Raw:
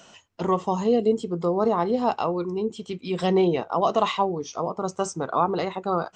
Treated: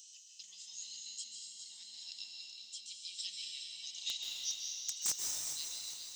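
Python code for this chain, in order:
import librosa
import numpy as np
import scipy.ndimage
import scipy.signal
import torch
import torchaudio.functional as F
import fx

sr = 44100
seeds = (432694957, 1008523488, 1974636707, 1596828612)

y = scipy.signal.sosfilt(scipy.signal.cheby2(4, 60, 1300.0, 'highpass', fs=sr, output='sos'), x)
y = (np.mod(10.0 ** (27.0 / 20.0) * y + 1.0, 2.0) - 1.0) / 10.0 ** (27.0 / 20.0)
y = fx.echo_feedback(y, sr, ms=410, feedback_pct=51, wet_db=-11)
y = fx.rev_plate(y, sr, seeds[0], rt60_s=2.7, hf_ratio=1.0, predelay_ms=120, drr_db=-0.5)
y = y * 10.0 ** (2.5 / 20.0)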